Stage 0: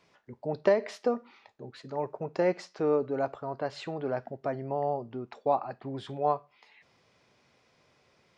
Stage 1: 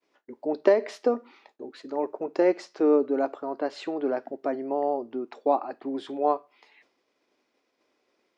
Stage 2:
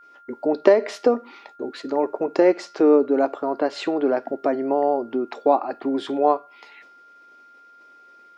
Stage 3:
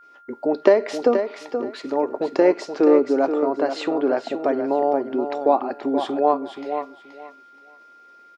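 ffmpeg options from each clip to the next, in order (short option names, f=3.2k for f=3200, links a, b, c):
-af "lowshelf=f=200:t=q:w=3:g=-13,agate=range=-33dB:threshold=-57dB:ratio=3:detection=peak,volume=1.5dB"
-filter_complex "[0:a]asplit=2[a][b];[b]acompressor=threshold=-32dB:ratio=6,volume=0.5dB[c];[a][c]amix=inputs=2:normalize=0,aeval=exprs='val(0)+0.00282*sin(2*PI*1400*n/s)':c=same,volume=3.5dB"
-af "aecho=1:1:477|954|1431:0.398|0.0756|0.0144"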